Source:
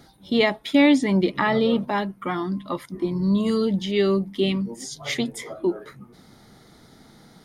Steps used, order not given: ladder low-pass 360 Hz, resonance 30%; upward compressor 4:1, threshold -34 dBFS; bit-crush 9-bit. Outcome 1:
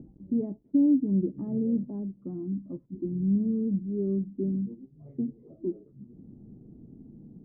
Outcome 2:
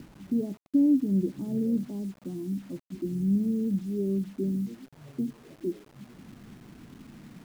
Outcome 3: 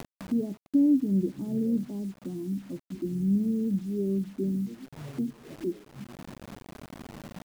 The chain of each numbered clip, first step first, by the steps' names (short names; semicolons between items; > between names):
bit-crush > upward compressor > ladder low-pass; upward compressor > ladder low-pass > bit-crush; ladder low-pass > bit-crush > upward compressor